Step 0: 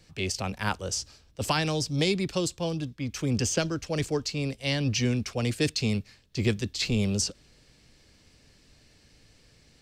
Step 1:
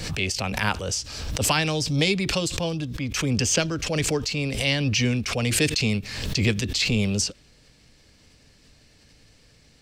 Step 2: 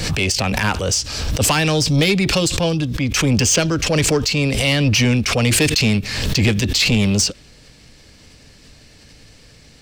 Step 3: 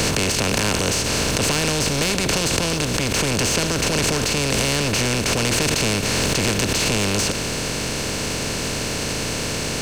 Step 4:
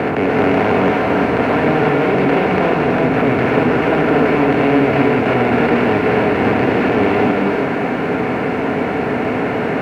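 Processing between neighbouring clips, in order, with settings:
dynamic EQ 2500 Hz, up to +5 dB, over -47 dBFS, Q 1.5; notch 360 Hz, Q 12; backwards sustainer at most 44 dB/s; gain +2.5 dB
in parallel at -2 dB: limiter -14.5 dBFS, peak gain reduction 10.5 dB; on the sum: soft clip -13 dBFS, distortion -16 dB; gain +4.5 dB
per-bin compression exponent 0.2; gain -12.5 dB
speaker cabinet 140–2100 Hz, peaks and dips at 270 Hz +8 dB, 410 Hz +6 dB, 740 Hz +10 dB, 1400 Hz +3 dB, 2100 Hz +3 dB; sample leveller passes 1; non-linear reverb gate 0.38 s rising, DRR -1.5 dB; gain -1.5 dB

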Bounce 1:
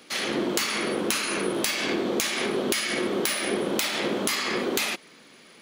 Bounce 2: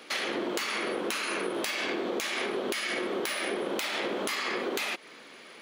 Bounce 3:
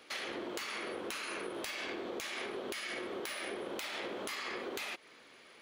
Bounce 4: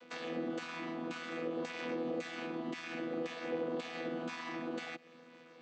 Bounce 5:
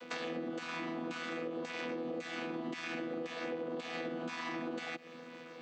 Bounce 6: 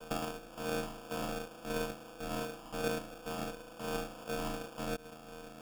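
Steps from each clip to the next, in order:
tone controls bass -12 dB, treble -7 dB; compressor 4:1, threshold -34 dBFS, peak gain reduction 9 dB; gain +4.5 dB
resonant low shelf 130 Hz +8 dB, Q 1.5; gain -8.5 dB
chord vocoder bare fifth, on E3; gain +2 dB
compressor, threshold -44 dBFS, peak gain reduction 11.5 dB; gain +7.5 dB
band-pass 2500 Hz, Q 5.2; sample-and-hold 22×; gain +13.5 dB

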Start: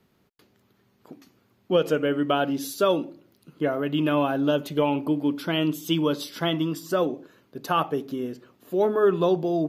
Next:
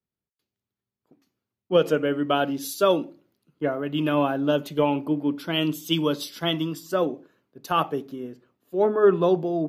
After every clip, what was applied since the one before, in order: three-band expander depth 70%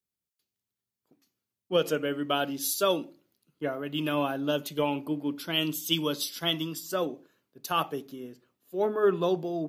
high shelf 3000 Hz +12 dB; gain -6.5 dB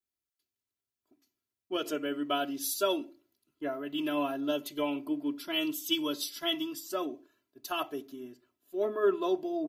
comb 3 ms, depth 97%; gain -6.5 dB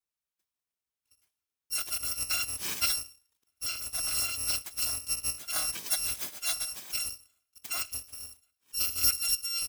FFT order left unsorted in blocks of 256 samples

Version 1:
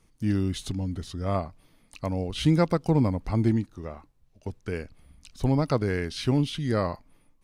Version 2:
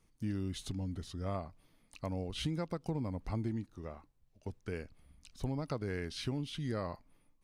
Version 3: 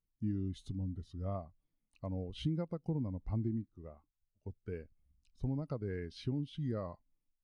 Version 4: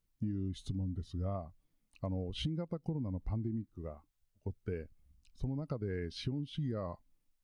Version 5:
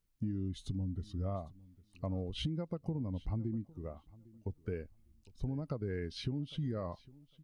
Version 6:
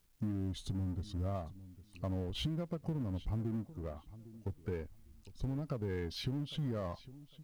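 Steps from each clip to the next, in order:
compressor 6:1, threshold -25 dBFS, peak gain reduction 9 dB; gain -7.5 dB
spectral expander 1.5:1; gain -1 dB
compressor, threshold -40 dBFS, peak gain reduction 10.5 dB; gain +6.5 dB
feedback echo 0.805 s, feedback 16%, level -22 dB
G.711 law mismatch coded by mu; gain -2 dB

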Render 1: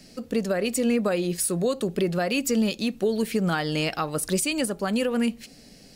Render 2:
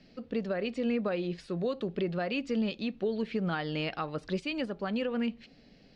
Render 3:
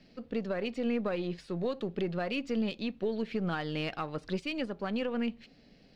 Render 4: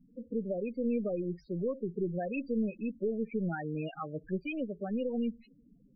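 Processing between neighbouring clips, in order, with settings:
LPF 4000 Hz 24 dB/oct; gain -7 dB
half-wave gain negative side -3 dB
loudest bins only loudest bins 8

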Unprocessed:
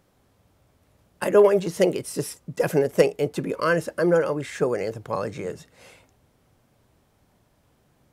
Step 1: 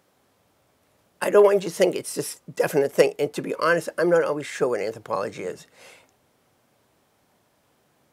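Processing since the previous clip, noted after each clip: HPF 350 Hz 6 dB/oct; gain +2.5 dB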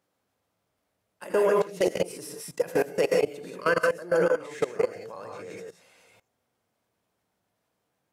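non-linear reverb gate 0.2 s rising, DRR -0.5 dB; level quantiser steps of 19 dB; gain -2 dB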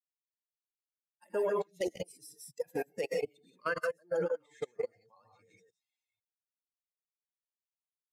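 per-bin expansion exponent 2; gain -6 dB

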